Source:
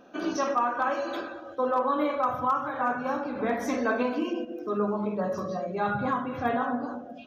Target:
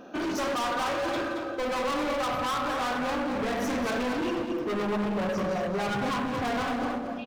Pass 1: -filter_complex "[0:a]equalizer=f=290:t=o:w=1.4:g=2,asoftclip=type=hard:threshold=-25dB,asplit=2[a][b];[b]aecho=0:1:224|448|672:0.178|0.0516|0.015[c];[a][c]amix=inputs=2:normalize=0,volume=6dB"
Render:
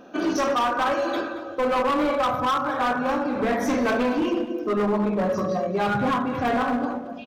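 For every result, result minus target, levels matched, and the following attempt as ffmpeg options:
echo-to-direct -7.5 dB; hard clip: distortion -6 dB
-filter_complex "[0:a]equalizer=f=290:t=o:w=1.4:g=2,asoftclip=type=hard:threshold=-25dB,asplit=2[a][b];[b]aecho=0:1:224|448|672|896:0.422|0.122|0.0355|0.0103[c];[a][c]amix=inputs=2:normalize=0,volume=6dB"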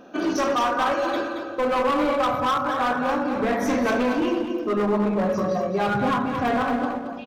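hard clip: distortion -6 dB
-filter_complex "[0:a]equalizer=f=290:t=o:w=1.4:g=2,asoftclip=type=hard:threshold=-34dB,asplit=2[a][b];[b]aecho=0:1:224|448|672|896:0.422|0.122|0.0355|0.0103[c];[a][c]amix=inputs=2:normalize=0,volume=6dB"

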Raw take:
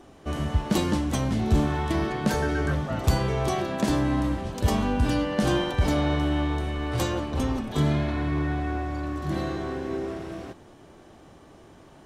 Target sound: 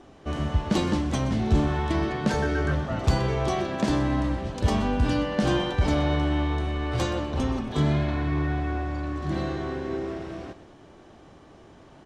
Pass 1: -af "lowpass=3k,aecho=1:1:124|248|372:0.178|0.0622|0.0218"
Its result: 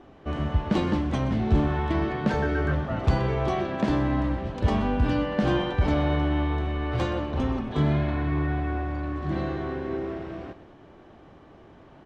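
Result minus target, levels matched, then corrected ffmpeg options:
8000 Hz band -11.5 dB
-af "lowpass=6.6k,aecho=1:1:124|248|372:0.178|0.0622|0.0218"

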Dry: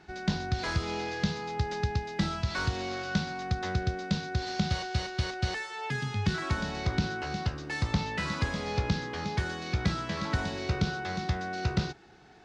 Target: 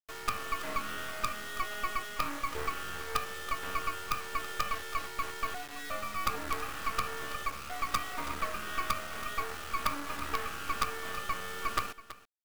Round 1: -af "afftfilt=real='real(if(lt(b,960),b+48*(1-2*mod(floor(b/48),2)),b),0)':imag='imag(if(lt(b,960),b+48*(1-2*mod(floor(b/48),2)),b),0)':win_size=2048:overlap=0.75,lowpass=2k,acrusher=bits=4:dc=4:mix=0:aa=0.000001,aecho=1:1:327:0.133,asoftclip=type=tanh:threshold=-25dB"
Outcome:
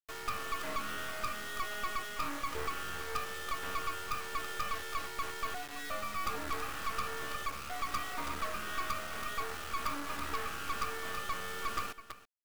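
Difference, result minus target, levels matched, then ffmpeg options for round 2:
soft clip: distortion +9 dB
-af "afftfilt=real='real(if(lt(b,960),b+48*(1-2*mod(floor(b/48),2)),b),0)':imag='imag(if(lt(b,960),b+48*(1-2*mod(floor(b/48),2)),b),0)':win_size=2048:overlap=0.75,lowpass=2k,acrusher=bits=4:dc=4:mix=0:aa=0.000001,aecho=1:1:327:0.133,asoftclip=type=tanh:threshold=-15dB"

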